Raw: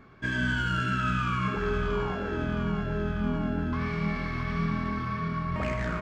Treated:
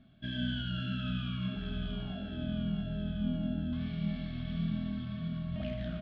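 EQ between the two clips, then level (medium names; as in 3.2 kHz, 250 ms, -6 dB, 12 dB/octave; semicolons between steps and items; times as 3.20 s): FFT filter 100 Hz 0 dB, 240 Hz +5 dB, 460 Hz -19 dB, 650 Hz +3 dB, 970 Hz -22 dB, 1.5 kHz -9 dB, 2.2 kHz -11 dB, 3.3 kHz +9 dB, 6.8 kHz -23 dB, 10 kHz -28 dB; -7.0 dB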